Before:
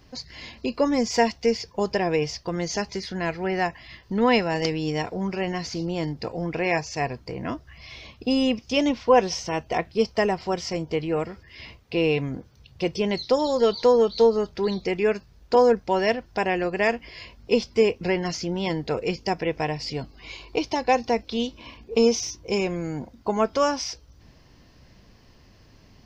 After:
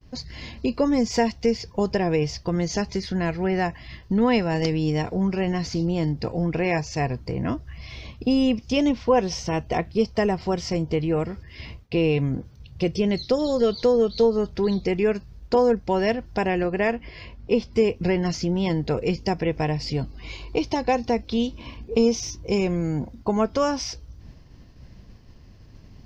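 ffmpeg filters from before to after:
ffmpeg -i in.wav -filter_complex "[0:a]asettb=1/sr,asplit=3[link_01][link_02][link_03];[link_01]atrim=end=12.834[link_04];[link_02]atrim=start=12.83:end=14.23,asetpts=PTS-STARTPTS,afade=type=in:duration=0.004:curve=qsin,afade=type=out:start_time=1.396:duration=0.004:curve=qsin,equalizer=frequency=920:width=5.6:gain=-9.5[link_05];[link_03]atrim=start=14.226[link_06];[link_04][link_05]acrossfade=duration=0.004:curve1=hsin:curve2=qsin[link_07];[link_07][link_06]acrossfade=duration=0.004:curve1=qsin:curve2=hsin,asettb=1/sr,asplit=3[link_08][link_09][link_10];[link_08]atrim=end=16.634[link_11];[link_09]atrim=start=16.63:end=17.73,asetpts=PTS-STARTPTS,afade=type=in:duration=0.004:curve=qsin,afade=type=out:start_time=1.096:duration=0.004:curve=qsin,bass=frequency=250:gain=-2,treble=frequency=4000:gain=-8[link_12];[link_10]atrim=start=17.726[link_13];[link_11][link_12]acrossfade=duration=0.004:curve1=hsin:curve2=qsin[link_14];[link_14][link_13]acrossfade=duration=0.004:curve1=qsin:curve2=hsin,agate=range=-33dB:threshold=-49dB:ratio=3:detection=peak,lowshelf=frequency=270:gain=11,acompressor=threshold=-22dB:ratio=1.5" out.wav

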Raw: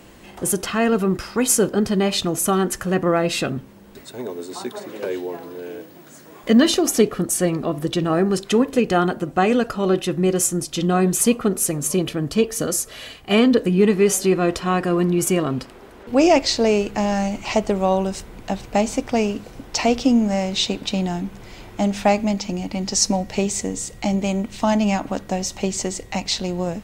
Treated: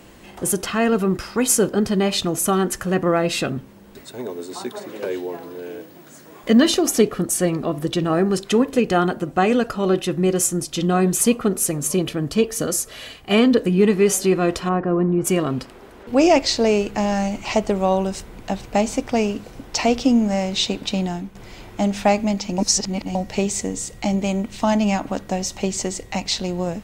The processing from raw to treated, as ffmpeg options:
ffmpeg -i in.wav -filter_complex "[0:a]asplit=3[link_01][link_02][link_03];[link_01]afade=type=out:start_time=14.68:duration=0.02[link_04];[link_02]lowpass=1200,afade=type=in:start_time=14.68:duration=0.02,afade=type=out:start_time=15.24:duration=0.02[link_05];[link_03]afade=type=in:start_time=15.24:duration=0.02[link_06];[link_04][link_05][link_06]amix=inputs=3:normalize=0,asplit=4[link_07][link_08][link_09][link_10];[link_07]atrim=end=21.35,asetpts=PTS-STARTPTS,afade=type=out:start_time=20.93:duration=0.42:curve=qsin:silence=0.354813[link_11];[link_08]atrim=start=21.35:end=22.582,asetpts=PTS-STARTPTS,afade=type=in:duration=0.004:curve=hsin:silence=0.354813[link_12];[link_09]atrim=start=22.578:end=23.152,asetpts=PTS-STARTPTS,areverse[link_13];[link_10]atrim=start=23.148[link_14];[link_11][link_12]concat=n=2:v=0:a=1[link_15];[link_15][link_13]acrossfade=duration=0.004:curve1=hsin:curve2=hsin[link_16];[link_16][link_14]acrossfade=duration=0.004:curve1=hsin:curve2=hsin" out.wav

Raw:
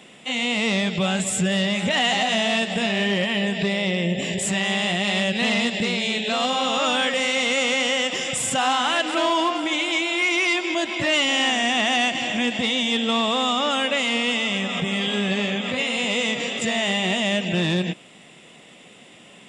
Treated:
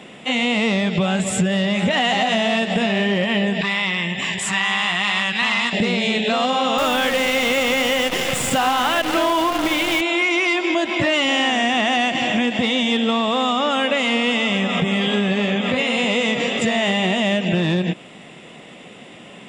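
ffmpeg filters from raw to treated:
ffmpeg -i in.wav -filter_complex "[0:a]asettb=1/sr,asplit=3[link_01][link_02][link_03];[link_01]atrim=end=3.614[link_04];[link_02]atrim=start=3.61:end=5.73,asetpts=PTS-STARTPTS,afade=type=in:duration=0.004:curve=qsin,afade=type=out:start_time=2.116:duration=0.004:curve=qsin,lowshelf=frequency=750:width_type=q:width=3:gain=-11[link_05];[link_03]atrim=start=5.726[link_06];[link_04][link_05]acrossfade=duration=0.004:curve1=hsin:curve2=qsin[link_07];[link_07][link_06]acrossfade=duration=0.004:curve1=qsin:curve2=hsin,asettb=1/sr,asplit=3[link_08][link_09][link_10];[link_08]atrim=end=6.784[link_11];[link_09]atrim=start=6.78:end=10.01,asetpts=PTS-STARTPTS,afade=type=in:duration=0.004:curve=qsin,afade=type=out:start_time=3.226:duration=0.004:curve=qsin,acrusher=bits=5:dc=4:mix=0:aa=0.000001[link_12];[link_10]atrim=start=10.006[link_13];[link_11][link_12]acrossfade=duration=0.004:curve1=hsin:curve2=qsin[link_14];[link_14][link_13]acrossfade=duration=0.004:curve1=qsin:curve2=hsin,highshelf=frequency=3500:gain=-10,acompressor=threshold=-24dB:ratio=6,volume=8.5dB" out.wav

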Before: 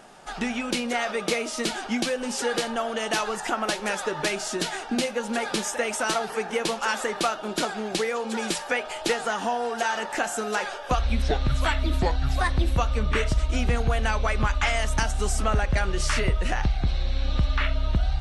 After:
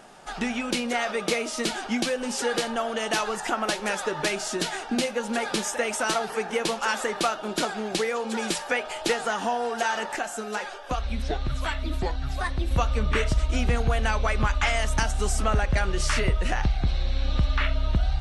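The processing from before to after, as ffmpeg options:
ffmpeg -i in.wav -filter_complex "[0:a]asettb=1/sr,asplit=3[link_01][link_02][link_03];[link_01]atrim=end=10.164[link_04];[link_02]atrim=start=10.16:end=12.71,asetpts=PTS-STARTPTS,afade=type=in:duration=0.004:curve=qsin,afade=type=out:start_time=2.546:duration=0.004:curve=qsin,flanger=delay=2.5:depth=2.7:regen=68:speed=1.6:shape=sinusoidal[link_05];[link_03]atrim=start=12.706[link_06];[link_04][link_05]acrossfade=duration=0.004:curve1=hsin:curve2=qsin[link_07];[link_07][link_06]acrossfade=duration=0.004:curve1=qsin:curve2=hsin" out.wav

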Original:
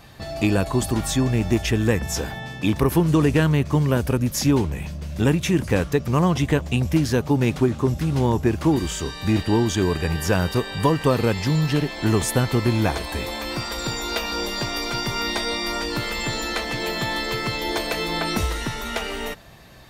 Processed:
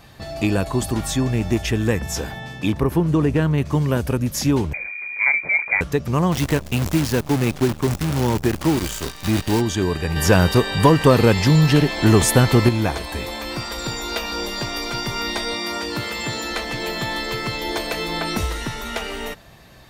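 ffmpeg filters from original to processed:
ffmpeg -i in.wav -filter_complex "[0:a]asettb=1/sr,asplit=3[link_01][link_02][link_03];[link_01]atrim=end=2.724[link_04];[link_02]atrim=start=2.72:end=3.58,asetpts=PTS-STARTPTS,afade=type=in:duration=0.004:curve=qsin,afade=type=out:start_time=0.856:duration=0.004:curve=qsin,highshelf=frequency=2200:gain=-9[link_05];[link_03]atrim=start=3.576[link_06];[link_04][link_05]acrossfade=duration=0.004:curve1=hsin:curve2=qsin[link_07];[link_07][link_06]acrossfade=duration=0.004:curve1=qsin:curve2=hsin,asettb=1/sr,asplit=3[link_08][link_09][link_10];[link_08]atrim=end=4.734[link_11];[link_09]atrim=start=4.73:end=5.81,asetpts=PTS-STARTPTS,afade=type=in:duration=0.004:curve=qsin,afade=type=out:start_time=1.076:duration=0.004:curve=qsin,lowpass=frequency=2100:width_type=q:width=0.5098,lowpass=frequency=2100:width_type=q:width=0.6013,lowpass=frequency=2100:width_type=q:width=0.9,lowpass=frequency=2100:width_type=q:width=2.563,afreqshift=-2500[link_12];[link_10]atrim=start=5.806[link_13];[link_11][link_12]acrossfade=duration=0.004:curve1=hsin:curve2=qsin[link_14];[link_14][link_13]acrossfade=duration=0.004:curve1=qsin:curve2=hsin,asplit=3[link_15][link_16][link_17];[link_15]afade=type=out:start_time=6.31:duration=0.02[link_18];[link_16]acrusher=bits=5:dc=4:mix=0:aa=0.000001,afade=type=in:start_time=6.31:duration=0.02,afade=type=out:start_time=9.6:duration=0.02[link_19];[link_17]afade=type=in:start_time=9.6:duration=0.02[link_20];[link_18][link_19][link_20]amix=inputs=3:normalize=0,asettb=1/sr,asplit=3[link_21][link_22][link_23];[link_21]atrim=end=10.164[link_24];[link_22]atrim=start=10.16:end=12.69,asetpts=PTS-STARTPTS,afade=type=in:duration=0.004:curve=qsin,afade=type=out:start_time=2.526:duration=0.004:curve=qsin,acontrast=72[link_25];[link_23]atrim=start=12.686[link_26];[link_24][link_25]acrossfade=duration=0.004:curve1=hsin:curve2=qsin[link_27];[link_27][link_26]acrossfade=duration=0.004:curve1=qsin:curve2=hsin,asettb=1/sr,asplit=3[link_28][link_29][link_30];[link_28]atrim=end=15.544[link_31];[link_29]atrim=start=15.54:end=16.51,asetpts=PTS-STARTPTS,afade=type=in:duration=0.004:curve=qsin,afade=type=out:start_time=0.966:duration=0.004:curve=qsin,highpass=frequency=63:width=0.5412,highpass=frequency=63:width=1.3066[link_32];[link_30]atrim=start=16.506[link_33];[link_31][link_32]acrossfade=duration=0.004:curve1=hsin:curve2=qsin[link_34];[link_34][link_33]acrossfade=duration=0.004:curve1=qsin:curve2=hsin" out.wav

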